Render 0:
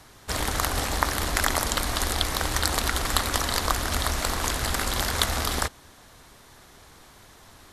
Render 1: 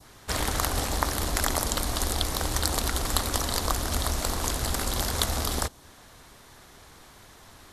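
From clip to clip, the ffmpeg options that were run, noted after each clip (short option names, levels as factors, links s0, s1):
-af "adynamicequalizer=threshold=0.00891:dfrequency=1900:dqfactor=0.73:tfrequency=1900:tqfactor=0.73:attack=5:release=100:ratio=0.375:range=3.5:mode=cutabove:tftype=bell"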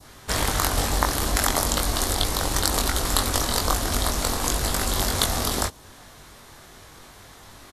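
-filter_complex "[0:a]asplit=2[s0][s1];[s1]adelay=21,volume=0.631[s2];[s0][s2]amix=inputs=2:normalize=0,volume=1.41"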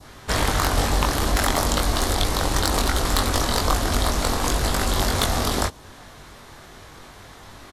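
-af "highshelf=f=6100:g=-8.5,aeval=exprs='0.841*sin(PI/2*2.51*val(0)/0.841)':c=same,volume=0.398"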